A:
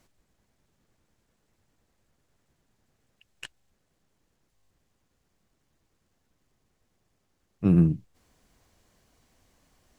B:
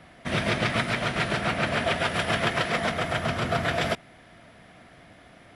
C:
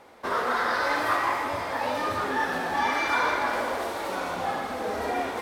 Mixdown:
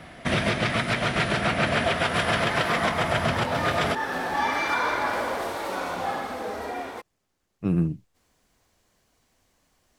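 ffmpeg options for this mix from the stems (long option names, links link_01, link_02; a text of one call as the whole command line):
ffmpeg -i stem1.wav -i stem2.wav -i stem3.wav -filter_complex "[0:a]lowshelf=frequency=330:gain=-5,volume=-7dB,asplit=2[link_01][link_02];[1:a]volume=-0.5dB[link_03];[2:a]dynaudnorm=framelen=130:gausssize=11:maxgain=5.5dB,adelay=1600,volume=-12dB[link_04];[link_02]apad=whole_len=245068[link_05];[link_03][link_05]sidechaincompress=threshold=-53dB:ratio=3:attack=27:release=1050[link_06];[link_01][link_06][link_04]amix=inputs=3:normalize=0,acontrast=83,alimiter=limit=-13.5dB:level=0:latency=1:release=284" out.wav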